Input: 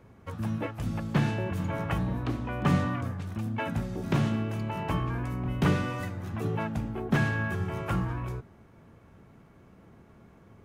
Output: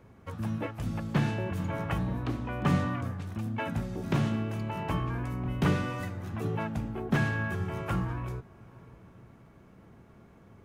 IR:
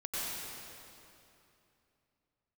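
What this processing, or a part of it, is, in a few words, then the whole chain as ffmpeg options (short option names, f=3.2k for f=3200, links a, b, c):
ducked reverb: -filter_complex "[0:a]asplit=3[a][b][c];[1:a]atrim=start_sample=2205[d];[b][d]afir=irnorm=-1:irlink=0[e];[c]apad=whole_len=469613[f];[e][f]sidechaincompress=threshold=-47dB:ratio=8:attack=16:release=353,volume=-15.5dB[g];[a][g]amix=inputs=2:normalize=0,volume=-1.5dB"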